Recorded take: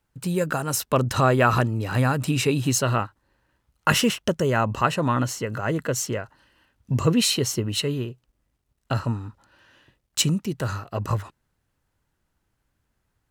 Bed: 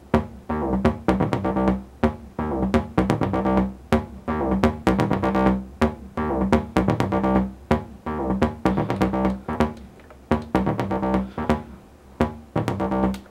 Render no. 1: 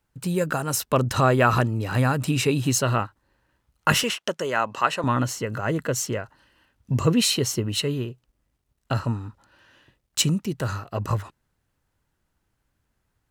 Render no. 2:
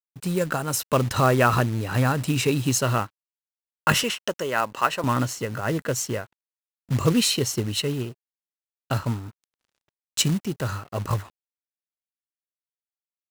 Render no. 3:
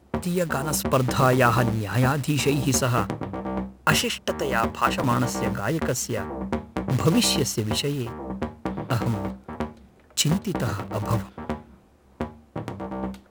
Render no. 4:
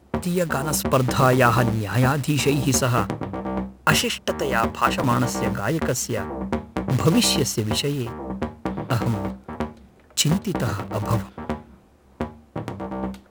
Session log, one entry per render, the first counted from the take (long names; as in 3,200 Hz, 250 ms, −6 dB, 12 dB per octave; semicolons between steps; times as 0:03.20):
0:04.03–0:05.04: meter weighting curve A
dead-zone distortion −49 dBFS; floating-point word with a short mantissa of 2 bits
mix in bed −9 dB
level +2 dB